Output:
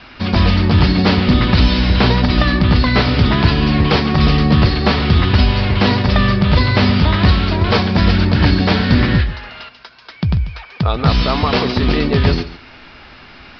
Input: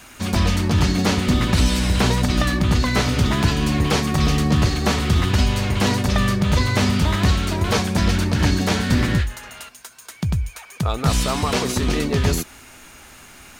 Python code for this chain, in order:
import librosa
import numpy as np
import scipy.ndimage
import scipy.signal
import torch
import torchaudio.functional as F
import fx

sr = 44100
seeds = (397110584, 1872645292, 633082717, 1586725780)

y = scipy.signal.sosfilt(scipy.signal.butter(16, 5200.0, 'lowpass', fs=sr, output='sos'), x)
y = y + 10.0 ** (-15.5 / 20.0) * np.pad(y, (int(141 * sr / 1000.0), 0))[:len(y)]
y = y * librosa.db_to_amplitude(5.5)